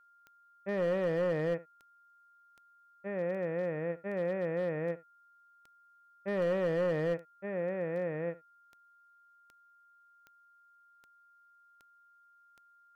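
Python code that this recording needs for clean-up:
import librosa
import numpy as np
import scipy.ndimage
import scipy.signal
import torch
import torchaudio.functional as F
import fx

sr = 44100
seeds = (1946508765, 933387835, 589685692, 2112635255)

y = fx.fix_declip(x, sr, threshold_db=-25.5)
y = fx.fix_declick_ar(y, sr, threshold=10.0)
y = fx.notch(y, sr, hz=1400.0, q=30.0)
y = fx.fix_echo_inverse(y, sr, delay_ms=71, level_db=-19.5)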